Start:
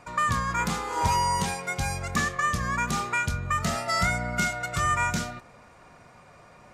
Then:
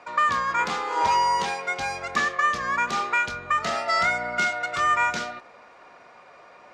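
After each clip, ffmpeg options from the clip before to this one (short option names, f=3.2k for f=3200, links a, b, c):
-filter_complex "[0:a]acrossover=split=300 5600:gain=0.0891 1 0.0794[a][b][c];[a][b][c]amix=inputs=3:normalize=0,volume=4dB"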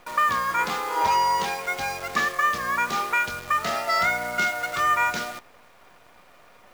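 -af "acrusher=bits=7:dc=4:mix=0:aa=0.000001"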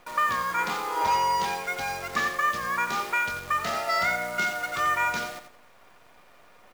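-af "aecho=1:1:89|178|267:0.355|0.0887|0.0222,volume=-3dB"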